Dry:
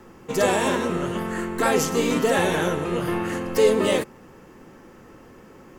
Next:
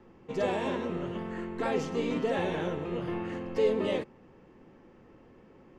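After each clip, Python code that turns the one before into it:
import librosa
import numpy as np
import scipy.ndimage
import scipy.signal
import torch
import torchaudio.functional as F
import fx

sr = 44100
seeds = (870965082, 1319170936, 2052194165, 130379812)

y = scipy.signal.sosfilt(scipy.signal.butter(2, 3200.0, 'lowpass', fs=sr, output='sos'), x)
y = fx.peak_eq(y, sr, hz=1400.0, db=-6.0, octaves=0.94)
y = y * 10.0 ** (-8.0 / 20.0)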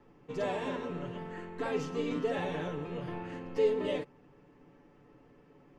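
y = x + 0.65 * np.pad(x, (int(6.9 * sr / 1000.0), 0))[:len(x)]
y = y * 10.0 ** (-5.0 / 20.0)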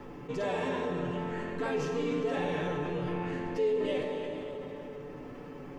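y = fx.rev_plate(x, sr, seeds[0], rt60_s=2.4, hf_ratio=0.8, predelay_ms=0, drr_db=3.0)
y = fx.env_flatten(y, sr, amount_pct=50)
y = y * 10.0 ** (-5.0 / 20.0)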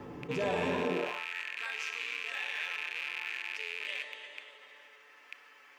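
y = fx.rattle_buzz(x, sr, strikes_db=-40.0, level_db=-27.0)
y = fx.filter_sweep_highpass(y, sr, from_hz=63.0, to_hz=1900.0, start_s=0.71, end_s=1.26, q=1.3)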